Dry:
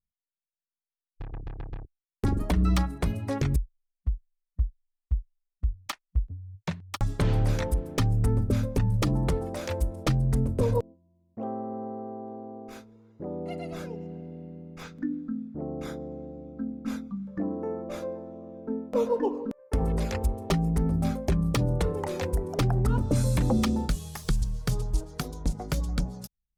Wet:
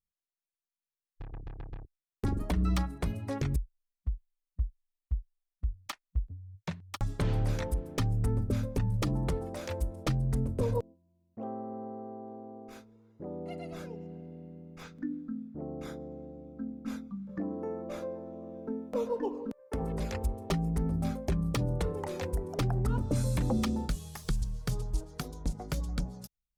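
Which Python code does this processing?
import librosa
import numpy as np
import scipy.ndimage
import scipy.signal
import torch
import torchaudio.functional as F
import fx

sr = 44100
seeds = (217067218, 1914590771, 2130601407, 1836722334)

y = fx.band_squash(x, sr, depth_pct=40, at=(17.29, 20.0))
y = y * librosa.db_to_amplitude(-5.0)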